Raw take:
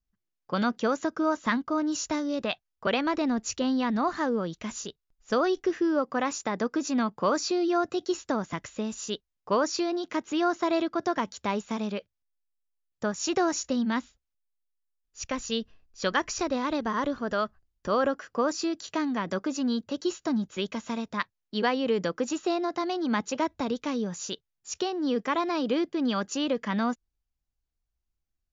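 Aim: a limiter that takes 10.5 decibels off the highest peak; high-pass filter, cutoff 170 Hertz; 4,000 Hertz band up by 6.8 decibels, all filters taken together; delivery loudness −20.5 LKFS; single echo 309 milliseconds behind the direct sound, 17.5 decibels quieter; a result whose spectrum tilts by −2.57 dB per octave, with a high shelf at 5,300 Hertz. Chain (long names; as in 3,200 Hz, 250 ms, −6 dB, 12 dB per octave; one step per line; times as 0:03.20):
high-pass filter 170 Hz
parametric band 4,000 Hz +6 dB
high-shelf EQ 5,300 Hz +6.5 dB
brickwall limiter −18.5 dBFS
single-tap delay 309 ms −17.5 dB
level +9 dB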